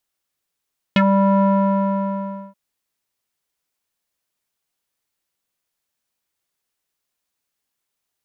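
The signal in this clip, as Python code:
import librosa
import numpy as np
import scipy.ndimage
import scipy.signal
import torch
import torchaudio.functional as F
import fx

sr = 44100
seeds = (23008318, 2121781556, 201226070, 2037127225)

y = fx.sub_voice(sr, note=55, wave='square', cutoff_hz=890.0, q=3.7, env_oct=2.0, env_s=0.07, attack_ms=1.8, decay_s=0.06, sustain_db=-3.5, release_s=1.12, note_s=0.46, slope=12)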